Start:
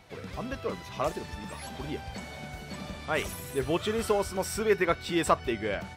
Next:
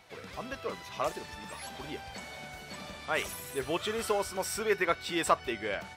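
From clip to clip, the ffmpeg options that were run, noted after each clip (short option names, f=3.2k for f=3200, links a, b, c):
-af "lowshelf=f=350:g=-10.5"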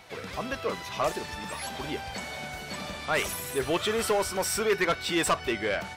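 -af "asoftclip=type=tanh:threshold=-25.5dB,volume=7dB"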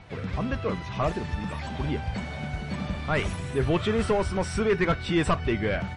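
-af "bass=f=250:g=15,treble=f=4k:g=-11" -ar 24000 -c:a libmp3lame -b:a 40k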